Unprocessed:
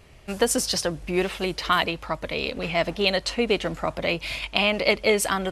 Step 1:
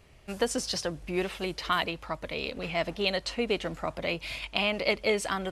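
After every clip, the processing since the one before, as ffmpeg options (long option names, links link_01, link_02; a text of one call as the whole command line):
ffmpeg -i in.wav -filter_complex "[0:a]acrossover=split=8200[link_01][link_02];[link_02]acompressor=threshold=-43dB:ratio=4:attack=1:release=60[link_03];[link_01][link_03]amix=inputs=2:normalize=0,volume=-6dB" out.wav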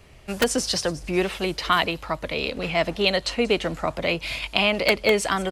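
ffmpeg -i in.wav -filter_complex "[0:a]acrossover=split=370|810|5400[link_01][link_02][link_03][link_04];[link_02]aeval=exprs='(mod(14.1*val(0)+1,2)-1)/14.1':channel_layout=same[link_05];[link_04]aecho=1:1:184|368|552|736:0.251|0.0929|0.0344|0.0127[link_06];[link_01][link_05][link_03][link_06]amix=inputs=4:normalize=0,volume=7dB" out.wav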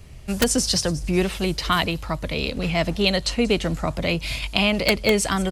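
ffmpeg -i in.wav -af "bass=frequency=250:gain=11,treble=frequency=4000:gain=7,volume=-1.5dB" out.wav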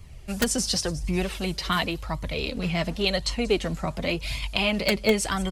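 ffmpeg -i in.wav -af "flanger=delay=0.9:depth=4.4:regen=38:speed=0.91:shape=sinusoidal" out.wav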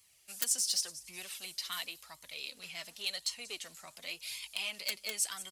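ffmpeg -i in.wav -af "asoftclip=type=tanh:threshold=-13dB,aderivative,volume=-2dB" out.wav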